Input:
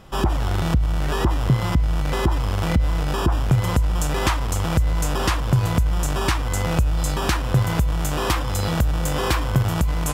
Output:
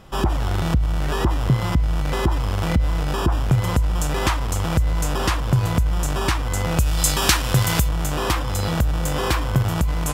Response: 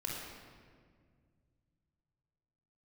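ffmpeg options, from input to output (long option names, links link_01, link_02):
-filter_complex "[0:a]asplit=3[link_01][link_02][link_03];[link_01]afade=type=out:start_time=6.78:duration=0.02[link_04];[link_02]highshelf=frequency=2100:gain=12,afade=type=in:start_time=6.78:duration=0.02,afade=type=out:start_time=7.87:duration=0.02[link_05];[link_03]afade=type=in:start_time=7.87:duration=0.02[link_06];[link_04][link_05][link_06]amix=inputs=3:normalize=0"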